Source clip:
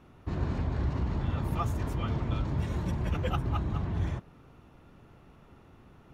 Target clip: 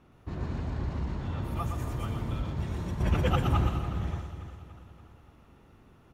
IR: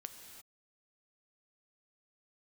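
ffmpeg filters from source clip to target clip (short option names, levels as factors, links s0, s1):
-filter_complex "[0:a]asettb=1/sr,asplit=3[s0][s1][s2];[s0]atrim=end=3.004[s3];[s1]atrim=start=3:end=3.67,asetpts=PTS-STARTPTS,afade=t=in:d=0.004:c=qsin,afade=t=out:st=0.666:d=0.004:c=qsin,acontrast=85[s4];[s2]atrim=start=3.666[s5];[s3][s4]acrossfade=d=0.004:c1=hsin:c2=qsin[s6];[s6][s5]acrossfade=d=0.004:c1=qsin:c2=hsin,aecho=1:1:287|574|861|1148|1435|1722:0.178|0.105|0.0619|0.0365|0.0215|0.0127,asplit=2[s7][s8];[1:a]atrim=start_sample=2205,highshelf=f=4500:g=10,adelay=119[s9];[s8][s9]afir=irnorm=-1:irlink=0,volume=0.841[s10];[s7][s10]amix=inputs=2:normalize=0,volume=0.668"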